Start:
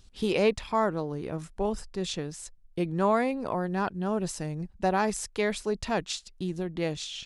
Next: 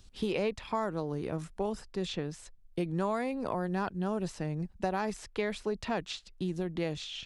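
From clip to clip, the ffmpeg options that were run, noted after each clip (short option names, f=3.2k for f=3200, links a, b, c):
-filter_complex "[0:a]acrossover=split=100|4000[a][b][c];[a]acompressor=threshold=-49dB:ratio=4[d];[b]acompressor=threshold=-29dB:ratio=4[e];[c]acompressor=threshold=-54dB:ratio=4[f];[d][e][f]amix=inputs=3:normalize=0"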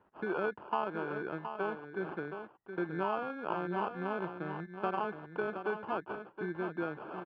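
-af "acrusher=samples=23:mix=1:aa=0.000001,highpass=240,equalizer=f=250:t=q:w=4:g=-7,equalizer=f=350:t=q:w=4:g=3,equalizer=f=530:t=q:w=4:g=-4,equalizer=f=930:t=q:w=4:g=4,equalizer=f=1.5k:t=q:w=4:g=4,equalizer=f=2.2k:t=q:w=4:g=-8,lowpass=f=2.3k:w=0.5412,lowpass=f=2.3k:w=1.3066,aecho=1:1:720:0.376,volume=-1.5dB"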